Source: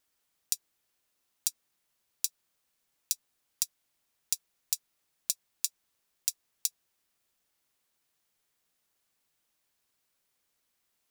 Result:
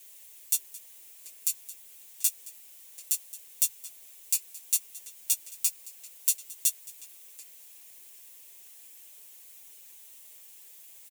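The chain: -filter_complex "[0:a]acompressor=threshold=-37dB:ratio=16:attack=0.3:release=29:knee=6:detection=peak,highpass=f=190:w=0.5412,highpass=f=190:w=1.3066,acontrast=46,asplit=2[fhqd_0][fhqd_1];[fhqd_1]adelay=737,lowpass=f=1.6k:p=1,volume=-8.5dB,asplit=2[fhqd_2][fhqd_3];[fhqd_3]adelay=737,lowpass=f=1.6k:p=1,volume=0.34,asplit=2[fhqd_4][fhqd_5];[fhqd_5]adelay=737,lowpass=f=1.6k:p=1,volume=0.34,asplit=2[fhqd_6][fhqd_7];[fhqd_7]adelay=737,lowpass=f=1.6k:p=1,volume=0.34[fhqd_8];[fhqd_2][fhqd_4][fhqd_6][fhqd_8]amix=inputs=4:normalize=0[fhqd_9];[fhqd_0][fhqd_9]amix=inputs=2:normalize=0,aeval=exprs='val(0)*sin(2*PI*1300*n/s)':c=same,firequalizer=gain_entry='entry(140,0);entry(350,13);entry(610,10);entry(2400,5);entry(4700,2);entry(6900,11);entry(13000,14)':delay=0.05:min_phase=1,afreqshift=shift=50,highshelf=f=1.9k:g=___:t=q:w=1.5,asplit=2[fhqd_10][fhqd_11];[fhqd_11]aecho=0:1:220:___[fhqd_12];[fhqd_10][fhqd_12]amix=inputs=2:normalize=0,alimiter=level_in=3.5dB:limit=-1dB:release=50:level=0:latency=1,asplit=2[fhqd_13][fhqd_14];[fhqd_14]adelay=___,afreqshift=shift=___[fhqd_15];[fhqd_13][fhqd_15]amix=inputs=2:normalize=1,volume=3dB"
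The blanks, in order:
8.5, 0.1, 6.8, -0.65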